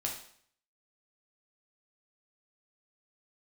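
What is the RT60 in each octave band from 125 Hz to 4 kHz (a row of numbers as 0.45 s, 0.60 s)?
0.65 s, 0.60 s, 0.60 s, 0.60 s, 0.60 s, 0.55 s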